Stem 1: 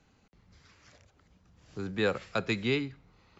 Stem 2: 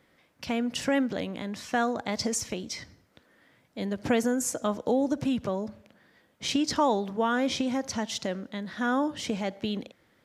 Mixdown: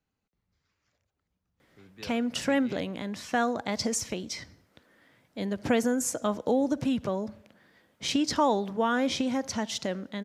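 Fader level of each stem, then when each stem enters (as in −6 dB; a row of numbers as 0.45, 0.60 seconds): −18.0, 0.0 decibels; 0.00, 1.60 seconds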